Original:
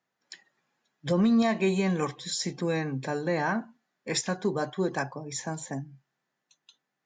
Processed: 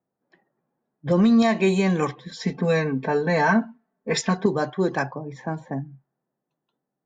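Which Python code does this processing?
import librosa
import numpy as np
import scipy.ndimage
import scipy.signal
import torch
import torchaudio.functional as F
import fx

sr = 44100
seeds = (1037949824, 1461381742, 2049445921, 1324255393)

y = fx.env_lowpass(x, sr, base_hz=590.0, full_db=-21.0)
y = fx.comb(y, sr, ms=4.5, depth=0.92, at=(2.31, 4.46))
y = y * librosa.db_to_amplitude(5.5)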